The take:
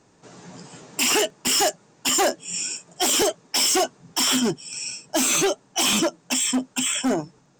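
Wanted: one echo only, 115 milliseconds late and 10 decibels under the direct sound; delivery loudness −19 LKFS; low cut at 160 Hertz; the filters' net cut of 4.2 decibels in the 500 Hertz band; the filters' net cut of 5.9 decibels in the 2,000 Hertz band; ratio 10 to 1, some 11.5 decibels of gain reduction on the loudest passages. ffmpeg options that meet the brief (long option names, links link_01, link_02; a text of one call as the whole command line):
ffmpeg -i in.wav -af "highpass=160,equalizer=frequency=500:width_type=o:gain=-5.5,equalizer=frequency=2000:width_type=o:gain=-8,acompressor=threshold=-31dB:ratio=10,aecho=1:1:115:0.316,volume=14dB" out.wav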